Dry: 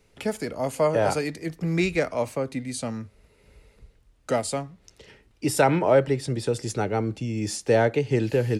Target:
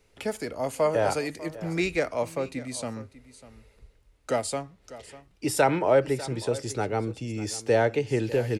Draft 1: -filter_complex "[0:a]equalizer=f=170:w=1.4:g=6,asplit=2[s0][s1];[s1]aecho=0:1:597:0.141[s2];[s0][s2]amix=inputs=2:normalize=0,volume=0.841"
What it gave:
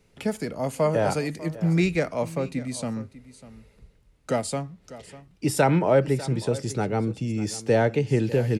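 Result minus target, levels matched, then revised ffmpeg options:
125 Hz band +5.0 dB
-filter_complex "[0:a]equalizer=f=170:w=1.4:g=-5.5,asplit=2[s0][s1];[s1]aecho=0:1:597:0.141[s2];[s0][s2]amix=inputs=2:normalize=0,volume=0.841"

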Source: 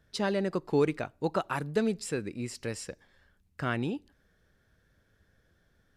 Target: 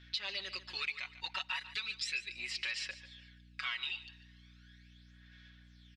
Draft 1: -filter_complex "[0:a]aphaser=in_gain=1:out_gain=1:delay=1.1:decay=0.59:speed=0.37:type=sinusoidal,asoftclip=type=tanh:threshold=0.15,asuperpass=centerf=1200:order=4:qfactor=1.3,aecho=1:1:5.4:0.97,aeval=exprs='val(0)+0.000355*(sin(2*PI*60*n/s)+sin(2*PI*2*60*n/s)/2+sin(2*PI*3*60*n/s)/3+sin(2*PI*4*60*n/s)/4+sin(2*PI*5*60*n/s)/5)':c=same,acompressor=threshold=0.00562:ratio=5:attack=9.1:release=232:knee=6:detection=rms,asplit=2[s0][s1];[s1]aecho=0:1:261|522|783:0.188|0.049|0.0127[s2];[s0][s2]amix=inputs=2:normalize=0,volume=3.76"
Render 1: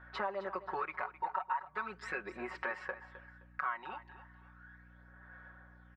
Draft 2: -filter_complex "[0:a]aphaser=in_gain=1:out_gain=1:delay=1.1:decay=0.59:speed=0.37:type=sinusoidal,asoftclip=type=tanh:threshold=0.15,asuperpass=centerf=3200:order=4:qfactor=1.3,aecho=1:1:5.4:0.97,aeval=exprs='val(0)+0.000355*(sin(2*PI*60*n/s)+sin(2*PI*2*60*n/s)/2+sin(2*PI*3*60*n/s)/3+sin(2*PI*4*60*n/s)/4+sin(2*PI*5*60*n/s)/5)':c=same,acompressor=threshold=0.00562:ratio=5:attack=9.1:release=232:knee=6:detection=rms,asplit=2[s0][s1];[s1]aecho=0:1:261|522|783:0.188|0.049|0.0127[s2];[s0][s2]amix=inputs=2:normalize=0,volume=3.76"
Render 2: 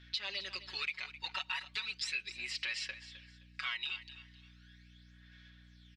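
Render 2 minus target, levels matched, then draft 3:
echo 116 ms late
-filter_complex "[0:a]aphaser=in_gain=1:out_gain=1:delay=1.1:decay=0.59:speed=0.37:type=sinusoidal,asoftclip=type=tanh:threshold=0.15,asuperpass=centerf=3200:order=4:qfactor=1.3,aecho=1:1:5.4:0.97,aeval=exprs='val(0)+0.000355*(sin(2*PI*60*n/s)+sin(2*PI*2*60*n/s)/2+sin(2*PI*3*60*n/s)/3+sin(2*PI*4*60*n/s)/4+sin(2*PI*5*60*n/s)/5)':c=same,acompressor=threshold=0.00562:ratio=5:attack=9.1:release=232:knee=6:detection=rms,asplit=2[s0][s1];[s1]aecho=0:1:145|290|435:0.188|0.049|0.0127[s2];[s0][s2]amix=inputs=2:normalize=0,volume=3.76"

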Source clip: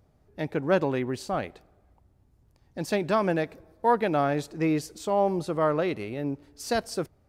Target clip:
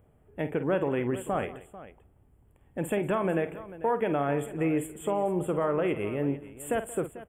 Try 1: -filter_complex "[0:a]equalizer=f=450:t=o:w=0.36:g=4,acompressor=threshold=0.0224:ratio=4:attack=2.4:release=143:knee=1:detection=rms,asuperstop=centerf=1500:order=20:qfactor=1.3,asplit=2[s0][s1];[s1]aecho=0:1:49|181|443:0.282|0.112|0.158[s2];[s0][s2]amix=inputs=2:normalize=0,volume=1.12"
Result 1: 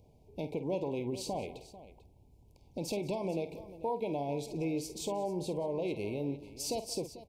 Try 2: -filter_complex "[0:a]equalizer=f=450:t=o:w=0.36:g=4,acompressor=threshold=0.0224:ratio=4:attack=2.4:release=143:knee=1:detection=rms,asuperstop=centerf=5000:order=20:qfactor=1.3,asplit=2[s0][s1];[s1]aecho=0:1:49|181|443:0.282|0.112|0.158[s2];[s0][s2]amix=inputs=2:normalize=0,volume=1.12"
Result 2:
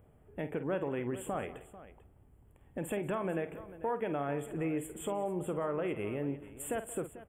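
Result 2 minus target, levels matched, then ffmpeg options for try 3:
compression: peak gain reduction +7 dB
-filter_complex "[0:a]equalizer=f=450:t=o:w=0.36:g=4,acompressor=threshold=0.0668:ratio=4:attack=2.4:release=143:knee=1:detection=rms,asuperstop=centerf=5000:order=20:qfactor=1.3,asplit=2[s0][s1];[s1]aecho=0:1:49|181|443:0.282|0.112|0.158[s2];[s0][s2]amix=inputs=2:normalize=0,volume=1.12"

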